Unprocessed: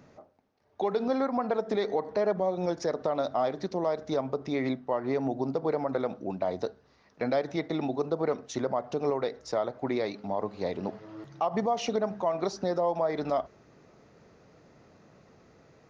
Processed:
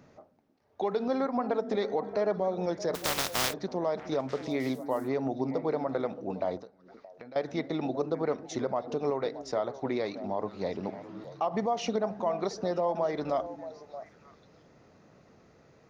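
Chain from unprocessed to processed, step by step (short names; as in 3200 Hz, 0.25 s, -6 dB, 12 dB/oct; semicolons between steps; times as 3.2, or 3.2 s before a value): 2.94–3.52 spectral contrast lowered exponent 0.19; delay with a stepping band-pass 0.312 s, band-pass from 240 Hz, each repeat 1.4 oct, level -9 dB; 6.57–7.36 compressor 6:1, threshold -45 dBFS, peak gain reduction 19.5 dB; gain -1.5 dB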